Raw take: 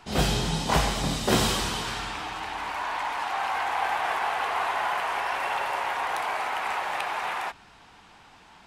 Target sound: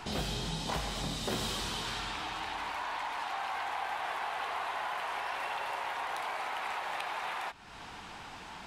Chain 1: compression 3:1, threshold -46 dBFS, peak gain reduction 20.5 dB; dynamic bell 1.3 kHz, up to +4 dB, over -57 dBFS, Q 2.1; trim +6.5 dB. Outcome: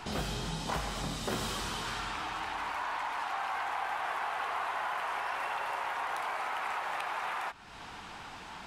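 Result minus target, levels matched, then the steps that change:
4 kHz band -3.0 dB
change: dynamic bell 3.8 kHz, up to +4 dB, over -57 dBFS, Q 2.1

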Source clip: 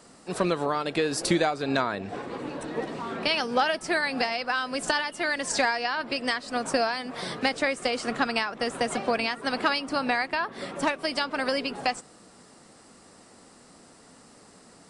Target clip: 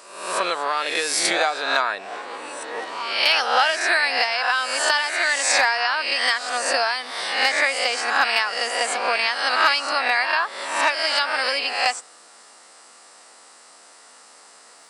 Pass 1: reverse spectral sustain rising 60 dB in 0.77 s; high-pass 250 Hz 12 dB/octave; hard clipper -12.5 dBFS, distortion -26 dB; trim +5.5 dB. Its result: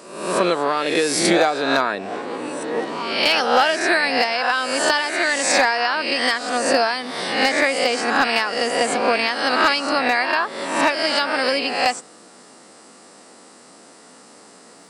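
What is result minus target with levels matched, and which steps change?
250 Hz band +14.0 dB
change: high-pass 790 Hz 12 dB/octave

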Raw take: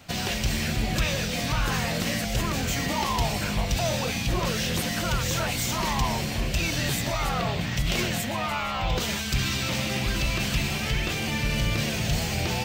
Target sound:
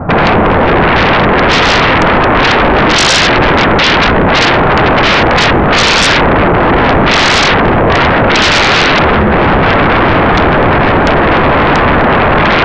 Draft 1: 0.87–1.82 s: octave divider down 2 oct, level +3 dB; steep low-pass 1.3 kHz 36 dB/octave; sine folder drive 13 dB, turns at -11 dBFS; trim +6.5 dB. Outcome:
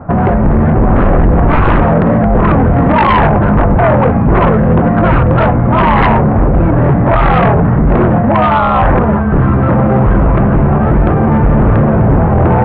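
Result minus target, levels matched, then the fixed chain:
sine folder: distortion -32 dB
0.87–1.82 s: octave divider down 2 oct, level +3 dB; steep low-pass 1.3 kHz 36 dB/octave; sine folder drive 24 dB, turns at -11 dBFS; trim +6.5 dB

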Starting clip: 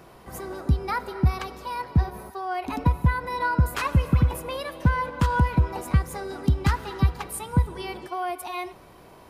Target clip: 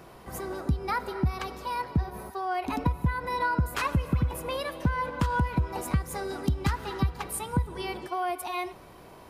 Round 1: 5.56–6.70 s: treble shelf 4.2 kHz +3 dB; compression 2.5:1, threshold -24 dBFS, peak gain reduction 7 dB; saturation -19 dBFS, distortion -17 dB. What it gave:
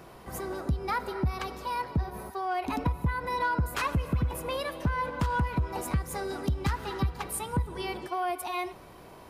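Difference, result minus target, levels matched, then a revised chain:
saturation: distortion +19 dB
5.56–6.70 s: treble shelf 4.2 kHz +3 dB; compression 2.5:1, threshold -24 dBFS, peak gain reduction 7 dB; saturation -7.5 dBFS, distortion -36 dB

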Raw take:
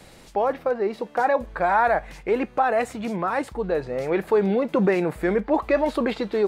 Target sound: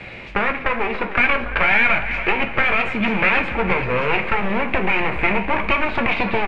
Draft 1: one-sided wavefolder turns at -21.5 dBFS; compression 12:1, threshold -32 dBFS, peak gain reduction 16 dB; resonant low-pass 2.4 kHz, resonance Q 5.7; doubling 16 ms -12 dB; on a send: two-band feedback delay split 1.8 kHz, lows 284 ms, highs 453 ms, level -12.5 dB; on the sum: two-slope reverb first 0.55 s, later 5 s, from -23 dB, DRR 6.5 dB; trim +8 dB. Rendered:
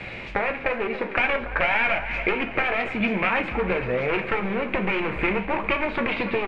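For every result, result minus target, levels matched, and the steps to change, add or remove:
one-sided wavefolder: distortion -9 dB; compression: peak gain reduction +5.5 dB
change: one-sided wavefolder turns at -28 dBFS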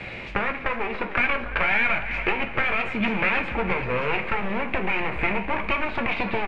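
compression: peak gain reduction +6 dB
change: compression 12:1, threshold -25.5 dBFS, peak gain reduction 10 dB

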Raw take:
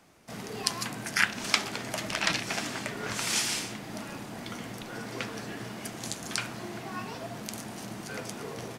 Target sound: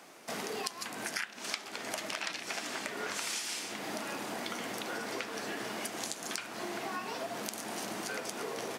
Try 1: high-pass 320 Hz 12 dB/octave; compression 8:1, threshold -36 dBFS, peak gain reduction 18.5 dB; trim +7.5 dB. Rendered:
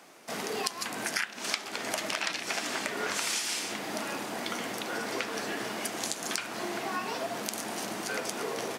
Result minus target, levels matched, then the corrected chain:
compression: peak gain reduction -5 dB
high-pass 320 Hz 12 dB/octave; compression 8:1, threshold -42 dBFS, peak gain reduction 24 dB; trim +7.5 dB

